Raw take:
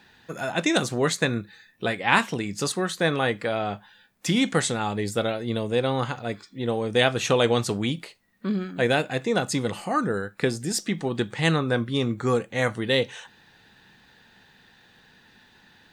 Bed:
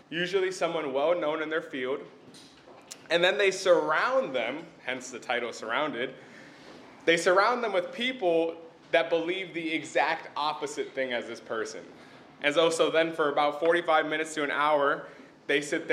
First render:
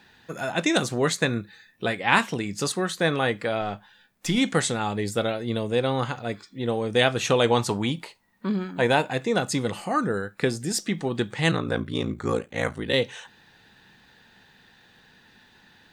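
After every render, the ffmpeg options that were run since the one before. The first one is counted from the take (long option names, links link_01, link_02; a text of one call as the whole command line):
ffmpeg -i in.wav -filter_complex "[0:a]asettb=1/sr,asplit=3[link_01][link_02][link_03];[link_01]atrim=end=3.614[link_04];[link_02]atrim=start=3.61:end=4.38,asetpts=PTS-STARTPTS,afade=type=in:duration=0.004:curve=qsin,afade=type=out:start_time=0.766:duration=0.004:curve=qsin,aeval=exprs='if(lt(val(0),0),0.708*val(0),val(0))':channel_layout=same[link_05];[link_03]atrim=start=4.376[link_06];[link_04][link_05]acrossfade=duration=0.004:curve1=hsin:curve2=qsin[link_07];[link_07][link_06]acrossfade=duration=0.004:curve1=qsin:curve2=hsin,asettb=1/sr,asplit=3[link_08][link_09][link_10];[link_08]atrim=end=7.514[link_11];[link_09]atrim=start=7.51:end=9.13,asetpts=PTS-STARTPTS,afade=type=in:duration=0.004:curve=qsin,afade=type=out:start_time=1.616:duration=0.004:curve=qsin,equalizer=frequency=920:width=4.6:gain=12.5[link_12];[link_10]atrim=start=9.126[link_13];[link_11][link_12]acrossfade=duration=0.004:curve1=hsin:curve2=qsin[link_14];[link_14][link_13]acrossfade=duration=0.004:curve1=qsin:curve2=hsin,asplit=3[link_15][link_16][link_17];[link_15]afade=type=out:start_time=11.51:duration=0.02[link_18];[link_16]aeval=exprs='val(0)*sin(2*PI*28*n/s)':channel_layout=same,afade=type=in:start_time=11.51:duration=0.02,afade=type=out:start_time=12.92:duration=0.02[link_19];[link_17]afade=type=in:start_time=12.92:duration=0.02[link_20];[link_18][link_19][link_20]amix=inputs=3:normalize=0" out.wav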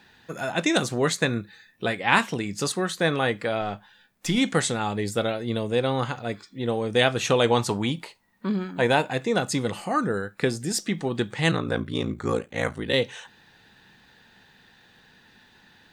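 ffmpeg -i in.wav -af anull out.wav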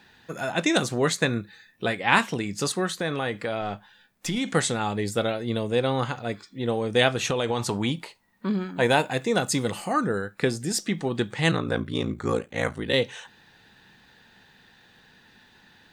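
ffmpeg -i in.wav -filter_complex "[0:a]asettb=1/sr,asplit=3[link_01][link_02][link_03];[link_01]atrim=end=2.884[link_04];[link_02]atrim=start=2.88:end=4.49,asetpts=PTS-STARTPTS,afade=type=in:duration=0.004:curve=qsin,afade=type=out:start_time=1.606:duration=0.004:curve=qsin,acompressor=threshold=-24dB:ratio=3:attack=3.2:release=140:knee=1:detection=peak[link_05];[link_03]atrim=start=4.486[link_06];[link_04][link_05]acrossfade=duration=0.004:curve1=hsin:curve2=qsin[link_07];[link_07][link_06]acrossfade=duration=0.004:curve1=qsin:curve2=hsin,asettb=1/sr,asplit=3[link_08][link_09][link_10];[link_08]atrim=end=7.144[link_11];[link_09]atrim=start=7.14:end=7.82,asetpts=PTS-STARTPTS,afade=type=in:duration=0.004:curve=qsin,afade=type=out:start_time=0.676:duration=0.004:curve=qsin,acompressor=threshold=-21dB:ratio=6:attack=3.2:release=140:knee=1:detection=peak[link_12];[link_10]atrim=start=7.816[link_13];[link_11][link_12]acrossfade=duration=0.004:curve1=hsin:curve2=qsin[link_14];[link_14][link_13]acrossfade=duration=0.004:curve1=qsin:curve2=hsin,asettb=1/sr,asplit=3[link_15][link_16][link_17];[link_15]atrim=end=8.814[link_18];[link_16]atrim=start=8.81:end=9.93,asetpts=PTS-STARTPTS,afade=type=in:duration=0.004:curve=qsin,afade=type=out:start_time=1.116:duration=0.004:curve=qsin,highshelf=frequency=7400:gain=7.5[link_19];[link_17]atrim=start=9.926[link_20];[link_18][link_19]acrossfade=duration=0.004:curve1=hsin:curve2=qsin[link_21];[link_21][link_20]acrossfade=duration=0.004:curve1=qsin:curve2=hsin" out.wav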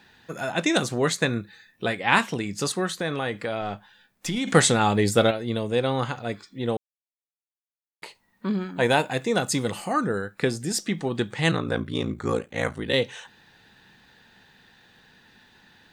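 ffmpeg -i in.wav -filter_complex "[0:a]asettb=1/sr,asplit=3[link_01][link_02][link_03];[link_01]atrim=end=4.474[link_04];[link_02]atrim=start=4.47:end=5.31,asetpts=PTS-STARTPTS,afade=type=in:duration=0.004:curve=qsin,afade=type=out:start_time=0.836:duration=0.004:curve=qsin,acontrast=65[link_05];[link_03]atrim=start=5.306[link_06];[link_04][link_05]acrossfade=duration=0.004:curve1=hsin:curve2=qsin[link_07];[link_07][link_06]acrossfade=duration=0.004:curve1=qsin:curve2=hsin,asplit=3[link_08][link_09][link_10];[link_08]atrim=end=6.77,asetpts=PTS-STARTPTS,afade=type=out:start_time=6.766:duration=0.004:curve=hsin[link_11];[link_09]atrim=start=6.77:end=8.02,asetpts=PTS-STARTPTS,volume=0[link_12];[link_10]atrim=start=8.02,asetpts=PTS-STARTPTS,afade=type=in:duration=0.004:curve=hsin[link_13];[link_11][link_12][link_13]concat=n=3:v=0:a=1" out.wav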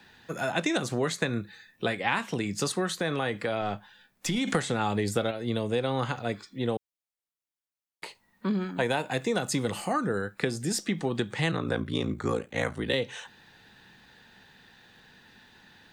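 ffmpeg -i in.wav -filter_complex "[0:a]acrossover=split=200|610|3100[link_01][link_02][link_03][link_04];[link_04]alimiter=limit=-19.5dB:level=0:latency=1:release=218[link_05];[link_01][link_02][link_03][link_05]amix=inputs=4:normalize=0,acompressor=threshold=-23dB:ratio=10" out.wav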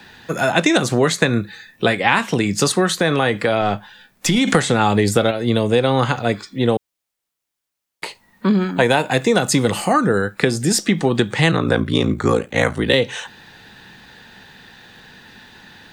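ffmpeg -i in.wav -af "volume=12dB,alimiter=limit=-1dB:level=0:latency=1" out.wav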